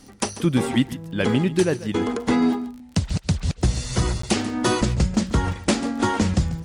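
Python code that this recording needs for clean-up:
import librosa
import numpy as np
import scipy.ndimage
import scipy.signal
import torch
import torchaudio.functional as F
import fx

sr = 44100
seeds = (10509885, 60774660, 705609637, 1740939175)

y = fx.fix_declip(x, sr, threshold_db=-9.0)
y = fx.fix_declick_ar(y, sr, threshold=6.5)
y = fx.fix_interpolate(y, sr, at_s=(4.22,), length_ms=14.0)
y = fx.fix_echo_inverse(y, sr, delay_ms=141, level_db=-15.5)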